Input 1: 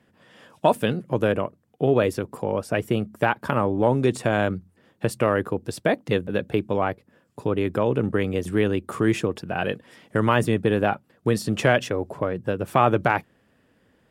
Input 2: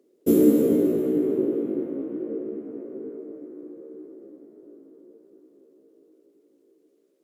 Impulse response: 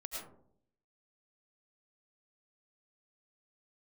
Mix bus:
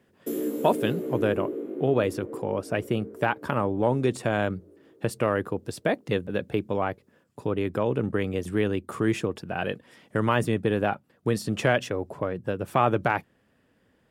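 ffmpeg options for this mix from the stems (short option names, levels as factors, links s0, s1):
-filter_complex "[0:a]volume=0.668[s0];[1:a]highpass=f=570:p=1,alimiter=limit=0.119:level=0:latency=1:release=441,volume=0.841[s1];[s0][s1]amix=inputs=2:normalize=0"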